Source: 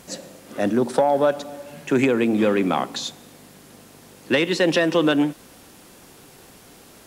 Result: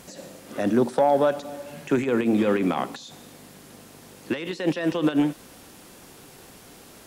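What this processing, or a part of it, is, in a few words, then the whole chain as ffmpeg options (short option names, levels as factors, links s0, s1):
de-esser from a sidechain: -filter_complex "[0:a]asplit=2[s0][s1];[s1]highpass=4800,apad=whole_len=311439[s2];[s0][s2]sidechaincompress=threshold=0.00794:ratio=16:attack=1.8:release=46"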